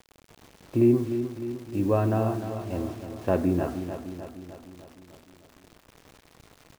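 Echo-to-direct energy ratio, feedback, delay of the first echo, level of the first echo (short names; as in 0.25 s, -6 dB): -7.5 dB, 59%, 0.303 s, -9.5 dB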